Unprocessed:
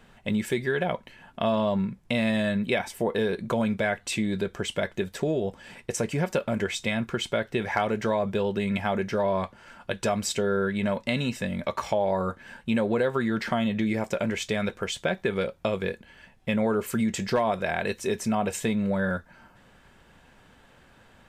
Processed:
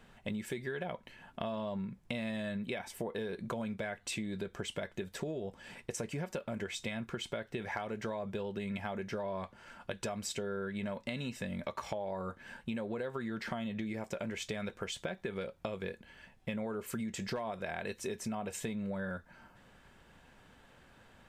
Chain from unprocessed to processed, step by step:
downward compressor 5 to 1, threshold −31 dBFS, peak gain reduction 10.5 dB
level −4.5 dB

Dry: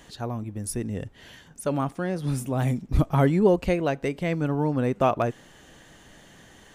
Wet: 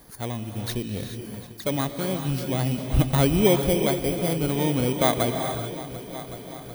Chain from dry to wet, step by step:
samples in bit-reversed order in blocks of 16 samples
echo machine with several playback heads 372 ms, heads all three, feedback 60%, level −20 dB
reverb whose tail is shaped and stops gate 460 ms rising, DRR 6 dB

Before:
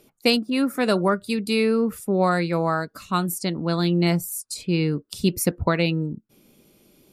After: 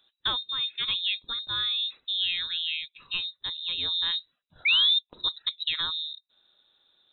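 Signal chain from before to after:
sound drawn into the spectrogram fall, 0:04.65–0:04.99, 230–1,800 Hz −13 dBFS
voice inversion scrambler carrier 3,900 Hz
level −8.5 dB

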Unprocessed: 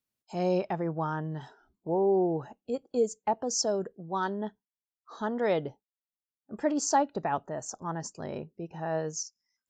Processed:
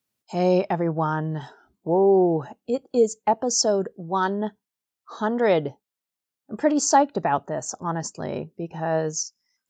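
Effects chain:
high-pass filter 66 Hz
level +7.5 dB

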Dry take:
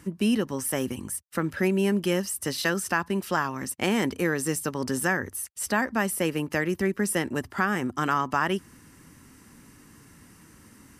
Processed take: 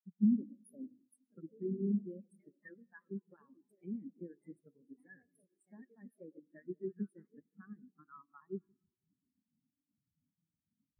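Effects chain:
high-shelf EQ 9,100 Hz +11 dB
hum removal 331 Hz, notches 36
in parallel at +1 dB: output level in coarse steps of 13 dB
on the sum: transient designer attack +8 dB, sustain 0 dB
reversed playback
downward compressor 4 to 1, threshold −38 dBFS, peak gain reduction 24.5 dB
reversed playback
delay with pitch and tempo change per echo 165 ms, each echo +3 semitones, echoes 3, each echo −6 dB
convolution reverb RT60 4.1 s, pre-delay 78 ms, DRR 5 dB
every bin expanded away from the loudest bin 4 to 1
level −2 dB

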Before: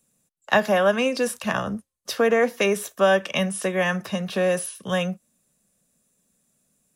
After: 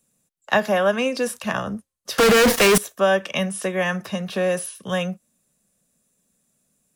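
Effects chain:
0:02.18–0:02.78: fuzz pedal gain 46 dB, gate −43 dBFS

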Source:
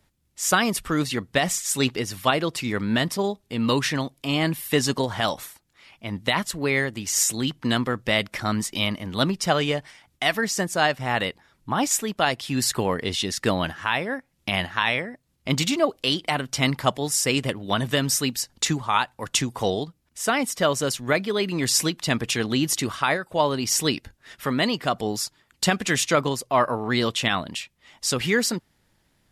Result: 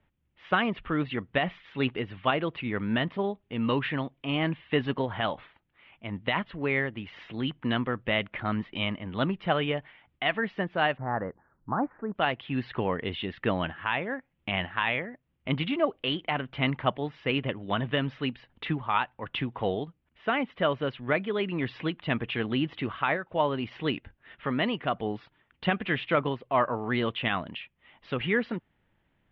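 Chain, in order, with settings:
Butterworth low-pass 3,200 Hz 48 dB per octave, from 0:10.96 1,600 Hz, from 0:12.14 3,200 Hz
level −4.5 dB

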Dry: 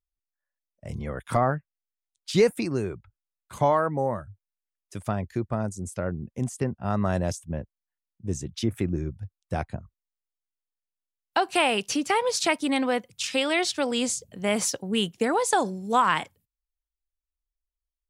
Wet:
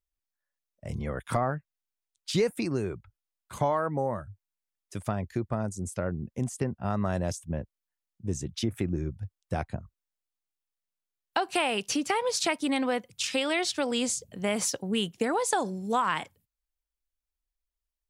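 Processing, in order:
downward compressor 2 to 1, threshold −26 dBFS, peak gain reduction 6.5 dB

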